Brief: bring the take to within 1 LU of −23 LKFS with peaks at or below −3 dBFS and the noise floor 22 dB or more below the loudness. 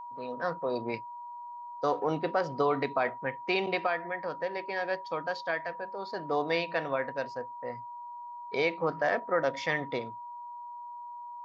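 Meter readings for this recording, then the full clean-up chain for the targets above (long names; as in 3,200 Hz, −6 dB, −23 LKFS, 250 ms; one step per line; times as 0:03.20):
interfering tone 960 Hz; level of the tone −40 dBFS; integrated loudness −32.0 LKFS; sample peak −15.0 dBFS; target loudness −23.0 LKFS
→ notch filter 960 Hz, Q 30
level +9 dB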